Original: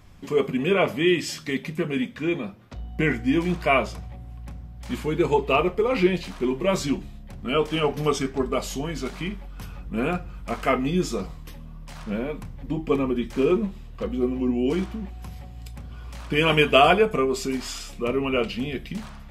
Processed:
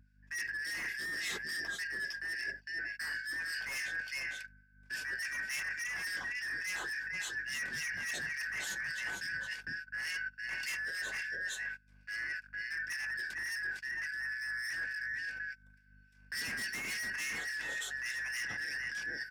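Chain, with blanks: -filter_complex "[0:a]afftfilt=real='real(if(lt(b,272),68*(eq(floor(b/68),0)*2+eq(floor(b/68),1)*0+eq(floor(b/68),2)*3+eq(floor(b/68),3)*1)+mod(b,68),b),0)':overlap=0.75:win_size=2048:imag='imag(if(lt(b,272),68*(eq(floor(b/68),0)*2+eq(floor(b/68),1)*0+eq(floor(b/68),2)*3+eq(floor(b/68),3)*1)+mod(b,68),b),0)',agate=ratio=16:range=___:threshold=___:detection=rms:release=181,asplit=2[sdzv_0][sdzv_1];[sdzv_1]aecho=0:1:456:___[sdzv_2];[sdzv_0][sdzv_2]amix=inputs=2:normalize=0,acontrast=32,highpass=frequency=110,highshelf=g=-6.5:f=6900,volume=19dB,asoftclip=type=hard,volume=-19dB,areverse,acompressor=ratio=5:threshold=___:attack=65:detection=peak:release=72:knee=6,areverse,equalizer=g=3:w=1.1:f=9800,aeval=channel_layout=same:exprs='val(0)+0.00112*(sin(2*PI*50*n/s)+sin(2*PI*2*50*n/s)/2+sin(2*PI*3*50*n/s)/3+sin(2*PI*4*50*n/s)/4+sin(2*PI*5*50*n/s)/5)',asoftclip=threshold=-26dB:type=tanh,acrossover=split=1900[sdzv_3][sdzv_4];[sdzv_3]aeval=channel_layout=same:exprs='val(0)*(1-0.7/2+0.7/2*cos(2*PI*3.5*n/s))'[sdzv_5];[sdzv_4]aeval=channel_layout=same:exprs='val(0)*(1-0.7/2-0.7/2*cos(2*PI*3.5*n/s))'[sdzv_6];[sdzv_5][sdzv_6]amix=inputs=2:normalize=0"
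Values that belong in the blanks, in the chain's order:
-33dB, -31dB, 0.422, -38dB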